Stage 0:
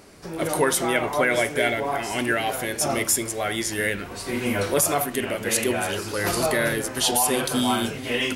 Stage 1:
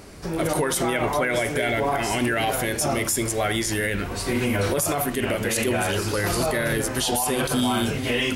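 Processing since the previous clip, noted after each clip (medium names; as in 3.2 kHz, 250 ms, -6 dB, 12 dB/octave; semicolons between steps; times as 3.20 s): bass shelf 110 Hz +10 dB; peak limiter -18 dBFS, peak gain reduction 10.5 dB; trim +4 dB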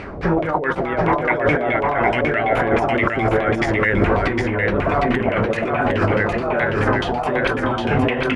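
compressor with a negative ratio -27 dBFS, ratio -0.5; LFO low-pass saw down 4.7 Hz 530–2600 Hz; on a send: delay 759 ms -3 dB; on the sum: trim +6.5 dB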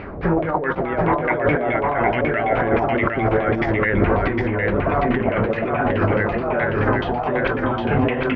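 distance through air 290 m; on a send at -24 dB: reverberation RT60 3.4 s, pre-delay 80 ms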